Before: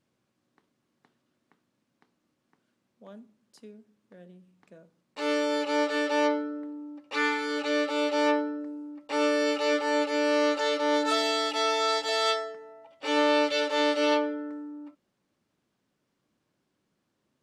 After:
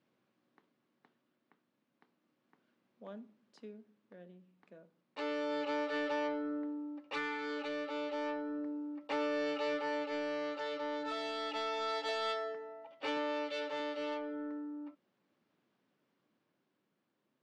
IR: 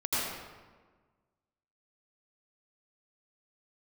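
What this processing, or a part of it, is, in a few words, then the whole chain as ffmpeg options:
AM radio: -filter_complex "[0:a]highpass=170,lowpass=3700,acompressor=threshold=-31dB:ratio=6,asoftclip=type=tanh:threshold=-27dB,tremolo=f=0.32:d=0.37,asettb=1/sr,asplit=3[link_01][link_02][link_03];[link_01]atrim=end=13.174[link_04];[link_02]atrim=start=13.17:end=13.8,asetpts=PTS-STARTPTS,afade=type=in:duration=0.004:curve=qsin,afade=type=out:start_time=0.626:duration=0.004:curve=qsin,highpass=120[link_05];[link_03]atrim=start=13.796[link_06];[link_04][link_05]acrossfade=duration=0.004:curve1=hsin:curve2=qsin[link_07];[link_07][link_06]acrossfade=duration=0.004:curve1=qsin:curve2=hsin"

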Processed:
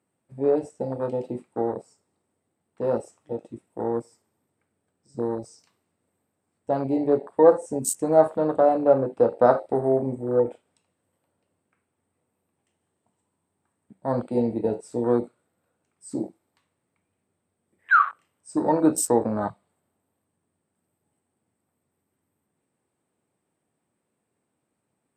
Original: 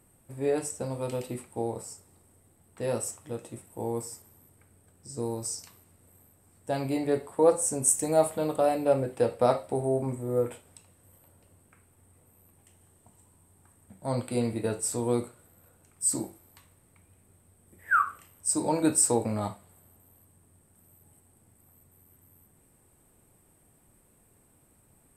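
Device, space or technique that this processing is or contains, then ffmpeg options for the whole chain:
over-cleaned archive recording: -filter_complex "[0:a]asettb=1/sr,asplit=3[link_01][link_02][link_03];[link_01]atrim=end=9.374[link_04];[link_02]atrim=start=9.37:end=10.36,asetpts=PTS-STARTPTS,afade=type=in:duration=0.004:curve=qsin,afade=type=out:start_time=0.986:duration=0.004:curve=qsin,highshelf=frequency=4000:gain=4.5[link_05];[link_03]atrim=start=10.356[link_06];[link_04][link_05]acrossfade=duration=0.004:curve1=hsin:curve2=qsin[link_07];[link_07][link_06]acrossfade=duration=0.004:curve1=qsin:curve2=hsin,highpass=170,lowpass=5700,afwtdn=0.02,volume=6dB"

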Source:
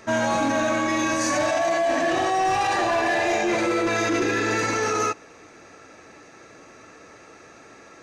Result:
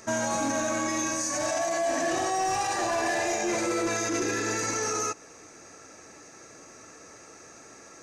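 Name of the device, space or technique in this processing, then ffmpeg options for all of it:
over-bright horn tweeter: -af "highshelf=frequency=4700:width_type=q:width=1.5:gain=8.5,alimiter=limit=-17.5dB:level=0:latency=1:release=227,volume=-3dB"

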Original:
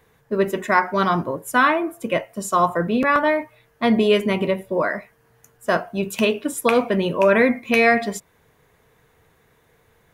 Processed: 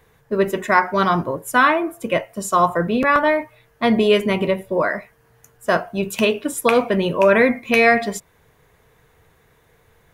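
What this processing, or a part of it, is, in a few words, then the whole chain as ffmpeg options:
low shelf boost with a cut just above: -af "lowshelf=frequency=76:gain=5.5,equalizer=frequency=240:width_type=o:width=0.86:gain=-2.5,volume=2dB"

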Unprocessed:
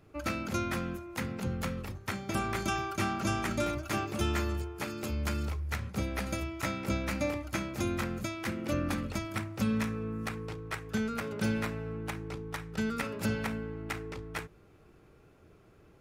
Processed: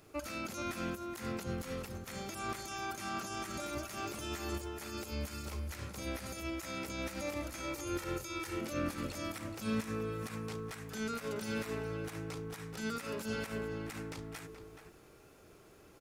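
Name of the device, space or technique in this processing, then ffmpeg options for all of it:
de-esser from a sidechain: -filter_complex "[0:a]bass=frequency=250:gain=-7,treble=frequency=4000:gain=10,asettb=1/sr,asplit=3[link_01][link_02][link_03];[link_01]atrim=end=7.604[link_04];[link_02]atrim=start=7.6:end=8.61,asetpts=PTS-STARTPTS,afade=type=in:duration=0.004:curve=qsin,afade=type=out:start_time=1.006:duration=0.004:curve=qsin,aecho=1:1:2.2:0.82,atrim=end_sample=44541[link_05];[link_03]atrim=start=8.606[link_06];[link_04][link_05]acrossfade=duration=0.004:curve1=hsin:curve2=qsin[link_07];[link_07][link_06]acrossfade=duration=0.004:curve1=qsin:curve2=hsin,asplit=2[link_08][link_09];[link_09]highpass=frequency=6400:poles=1,apad=whole_len=705778[link_10];[link_08][link_10]sidechaincompress=threshold=-47dB:ratio=8:attack=0.64:release=57,asplit=2[link_11][link_12];[link_12]adelay=425.7,volume=-8dB,highshelf=frequency=4000:gain=-9.58[link_13];[link_11][link_13]amix=inputs=2:normalize=0,volume=2dB"

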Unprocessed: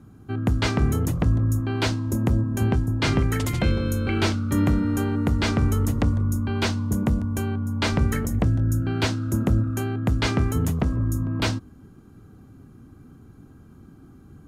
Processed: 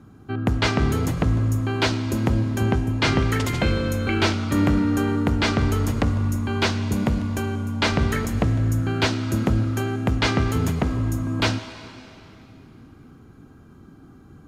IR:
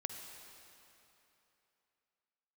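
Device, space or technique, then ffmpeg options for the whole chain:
filtered reverb send: -filter_complex "[0:a]asplit=2[link_01][link_02];[link_02]highpass=frequency=390:poles=1,lowpass=7100[link_03];[1:a]atrim=start_sample=2205[link_04];[link_03][link_04]afir=irnorm=-1:irlink=0,volume=1.5dB[link_05];[link_01][link_05]amix=inputs=2:normalize=0,volume=-1.5dB"

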